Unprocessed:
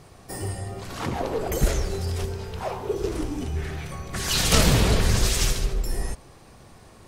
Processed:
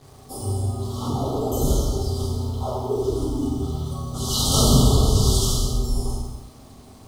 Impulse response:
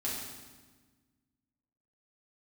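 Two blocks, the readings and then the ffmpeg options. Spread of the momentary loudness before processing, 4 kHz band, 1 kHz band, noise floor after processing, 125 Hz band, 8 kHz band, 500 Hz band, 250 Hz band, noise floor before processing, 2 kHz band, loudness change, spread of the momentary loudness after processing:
14 LU, +1.5 dB, +1.5 dB, −46 dBFS, +4.5 dB, +1.5 dB, +2.5 dB, +5.0 dB, −49 dBFS, below −20 dB, +3.0 dB, 13 LU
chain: -filter_complex "[0:a]asuperstop=centerf=2000:order=20:qfactor=1.2[link_01];[1:a]atrim=start_sample=2205,afade=type=out:start_time=0.4:duration=0.01,atrim=end_sample=18081[link_02];[link_01][link_02]afir=irnorm=-1:irlink=0,acrusher=bits=7:mix=0:aa=0.5,volume=-2dB"

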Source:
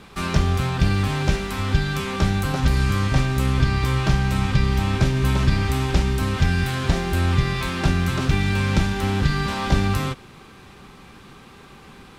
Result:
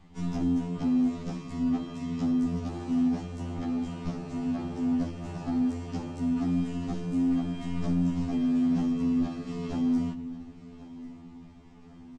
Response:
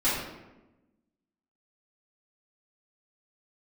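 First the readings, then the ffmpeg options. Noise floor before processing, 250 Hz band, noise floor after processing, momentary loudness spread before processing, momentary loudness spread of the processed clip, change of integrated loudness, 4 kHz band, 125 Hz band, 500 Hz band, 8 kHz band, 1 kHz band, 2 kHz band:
−46 dBFS, −0.5 dB, −50 dBFS, 3 LU, 12 LU, −8.0 dB, −20.5 dB, −15.5 dB, −12.0 dB, below −15 dB, −15.5 dB, −23.5 dB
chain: -filter_complex "[0:a]equalizer=frequency=125:width_type=o:width=1:gain=5,equalizer=frequency=250:width_type=o:width=1:gain=-8,equalizer=frequency=500:width_type=o:width=1:gain=8,equalizer=frequency=2000:width_type=o:width=1:gain=-10,equalizer=frequency=4000:width_type=o:width=1:gain=-10,afreqshift=-350,adynamicsmooth=sensitivity=6.5:basefreq=5800,lowpass=frequency=8000:width=0.5412,lowpass=frequency=8000:width=1.3066,equalizer=frequency=540:width_type=o:width=1.2:gain=-11,asplit=2[link_01][link_02];[1:a]atrim=start_sample=2205[link_03];[link_02][link_03]afir=irnorm=-1:irlink=0,volume=-26dB[link_04];[link_01][link_04]amix=inputs=2:normalize=0,asoftclip=type=tanh:threshold=-18.5dB,aecho=1:1:1092|2184|3276|4368:0.126|0.0592|0.0278|0.0131,afftfilt=real='re*2*eq(mod(b,4),0)':imag='im*2*eq(mod(b,4),0)':win_size=2048:overlap=0.75,volume=-3.5dB"

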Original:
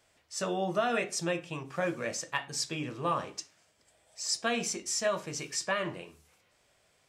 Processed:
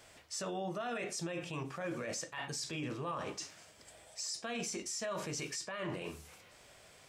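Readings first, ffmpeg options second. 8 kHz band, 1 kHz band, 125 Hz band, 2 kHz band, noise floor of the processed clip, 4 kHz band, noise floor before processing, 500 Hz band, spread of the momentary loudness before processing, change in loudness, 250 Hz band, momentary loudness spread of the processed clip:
−6.0 dB, −8.5 dB, −3.5 dB, −8.0 dB, −60 dBFS, −6.5 dB, −70 dBFS, −7.5 dB, 9 LU, −7.0 dB, −5.0 dB, 17 LU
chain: -af "areverse,acompressor=threshold=-40dB:ratio=6,areverse,alimiter=level_in=16.5dB:limit=-24dB:level=0:latency=1:release=36,volume=-16.5dB,volume=9.5dB"

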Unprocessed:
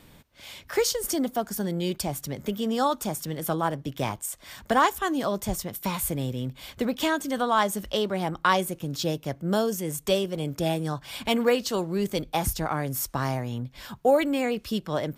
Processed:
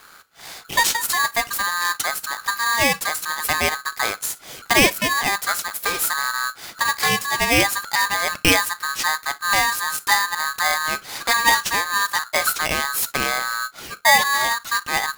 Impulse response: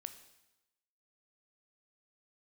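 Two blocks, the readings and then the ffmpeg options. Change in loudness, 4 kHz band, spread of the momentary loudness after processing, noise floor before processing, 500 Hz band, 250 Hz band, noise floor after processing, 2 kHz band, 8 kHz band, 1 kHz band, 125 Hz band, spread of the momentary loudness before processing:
+7.5 dB, +11.0 dB, 8 LU, −54 dBFS, −2.5 dB, −4.0 dB, −47 dBFS, +15.5 dB, +11.0 dB, +7.0 dB, −5.0 dB, 9 LU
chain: -filter_complex "[0:a]asplit=2[link_01][link_02];[1:a]atrim=start_sample=2205,atrim=end_sample=3087,highshelf=frequency=9100:gain=6.5[link_03];[link_02][link_03]afir=irnorm=-1:irlink=0,volume=3.5dB[link_04];[link_01][link_04]amix=inputs=2:normalize=0,aeval=exprs='val(0)*sgn(sin(2*PI*1400*n/s))':channel_layout=same"

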